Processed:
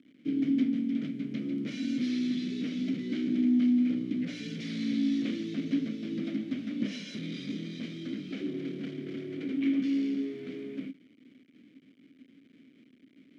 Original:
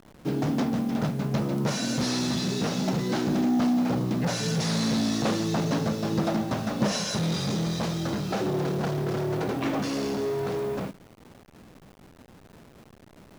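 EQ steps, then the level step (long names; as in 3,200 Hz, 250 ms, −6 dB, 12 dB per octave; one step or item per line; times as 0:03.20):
formant filter i
high-pass filter 110 Hz
+4.5 dB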